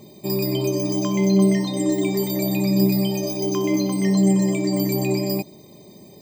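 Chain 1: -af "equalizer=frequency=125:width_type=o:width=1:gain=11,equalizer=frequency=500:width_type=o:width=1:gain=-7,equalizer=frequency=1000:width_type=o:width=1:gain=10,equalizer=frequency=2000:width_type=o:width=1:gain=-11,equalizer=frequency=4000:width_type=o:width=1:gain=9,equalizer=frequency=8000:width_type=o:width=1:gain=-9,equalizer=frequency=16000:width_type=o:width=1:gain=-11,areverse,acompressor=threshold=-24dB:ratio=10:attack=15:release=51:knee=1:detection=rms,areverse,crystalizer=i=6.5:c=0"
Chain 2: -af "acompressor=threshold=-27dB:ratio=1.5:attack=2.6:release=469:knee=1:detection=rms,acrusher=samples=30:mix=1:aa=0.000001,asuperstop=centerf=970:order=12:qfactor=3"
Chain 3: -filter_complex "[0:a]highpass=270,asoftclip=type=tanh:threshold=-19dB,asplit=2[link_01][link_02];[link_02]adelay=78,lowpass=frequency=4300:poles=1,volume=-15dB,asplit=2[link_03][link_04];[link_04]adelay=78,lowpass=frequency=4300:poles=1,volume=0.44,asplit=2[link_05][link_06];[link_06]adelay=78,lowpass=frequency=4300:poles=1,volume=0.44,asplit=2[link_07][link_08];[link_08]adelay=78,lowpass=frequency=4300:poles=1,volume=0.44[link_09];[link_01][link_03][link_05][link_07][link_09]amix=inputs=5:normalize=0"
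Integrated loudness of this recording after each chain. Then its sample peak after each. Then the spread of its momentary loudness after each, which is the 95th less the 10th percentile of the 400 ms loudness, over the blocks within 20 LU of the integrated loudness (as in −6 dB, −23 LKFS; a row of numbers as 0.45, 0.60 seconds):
−22.5, −25.5, −26.0 LKFS; −7.5, −12.5, −17.5 dBFS; 6, 5, 3 LU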